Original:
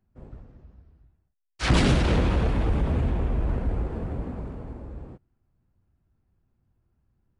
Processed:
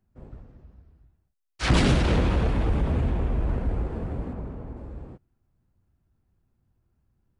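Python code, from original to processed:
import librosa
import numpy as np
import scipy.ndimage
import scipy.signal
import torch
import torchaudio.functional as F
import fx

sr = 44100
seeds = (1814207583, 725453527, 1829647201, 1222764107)

y = fx.high_shelf(x, sr, hz=3200.0, db=-8.0, at=(4.33, 4.77))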